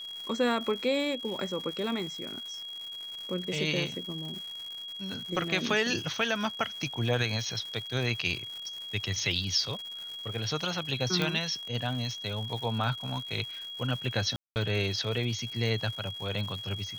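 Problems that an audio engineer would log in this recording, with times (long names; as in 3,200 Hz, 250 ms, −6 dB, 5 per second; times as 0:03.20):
surface crackle 260 per second −38 dBFS
whistle 3,300 Hz −38 dBFS
0:11.22: click −15 dBFS
0:14.36–0:14.56: drop-out 199 ms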